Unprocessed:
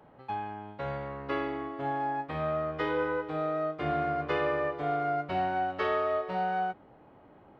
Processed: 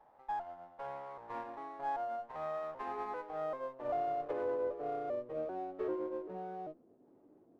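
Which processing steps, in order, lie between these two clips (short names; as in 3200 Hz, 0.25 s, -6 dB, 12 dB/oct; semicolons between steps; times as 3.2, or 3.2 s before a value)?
trilling pitch shifter -3 st, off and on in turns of 0.392 s; band-pass sweep 850 Hz -> 330 Hz, 3.05–6.18; running maximum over 5 samples; gain -2 dB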